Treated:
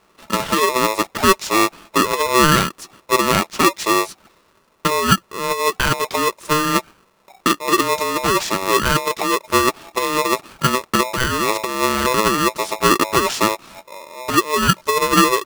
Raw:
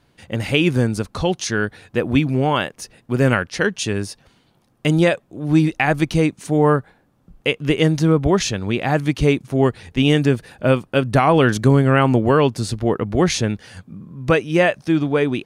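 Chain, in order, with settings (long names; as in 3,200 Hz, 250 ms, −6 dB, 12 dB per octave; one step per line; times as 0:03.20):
compressor whose output falls as the input rises −17 dBFS, ratio −0.5
hollow resonant body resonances 400/570 Hz, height 13 dB, ringing for 25 ms
ring modulator with a square carrier 760 Hz
level −5 dB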